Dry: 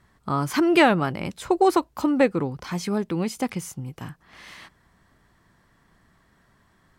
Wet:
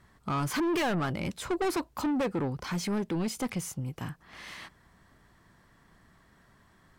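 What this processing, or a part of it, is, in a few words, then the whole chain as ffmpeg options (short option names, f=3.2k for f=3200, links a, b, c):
saturation between pre-emphasis and de-emphasis: -af "highshelf=f=3.6k:g=6.5,asoftclip=type=tanh:threshold=-25.5dB,highshelf=f=3.6k:g=-6.5"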